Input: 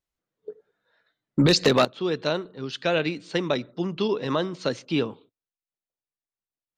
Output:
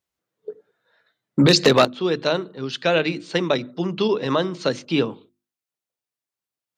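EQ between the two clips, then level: high-pass 81 Hz; hum notches 50/100/150/200/250/300/350 Hz; +4.5 dB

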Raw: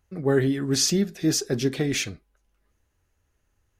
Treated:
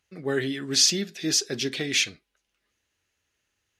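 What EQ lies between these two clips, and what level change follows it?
frequency weighting D; -5.0 dB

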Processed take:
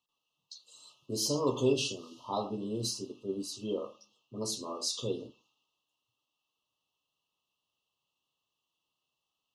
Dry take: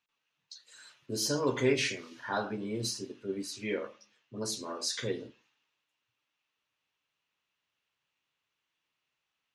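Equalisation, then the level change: brick-wall FIR band-stop 1.3–2.6 kHz; 0.0 dB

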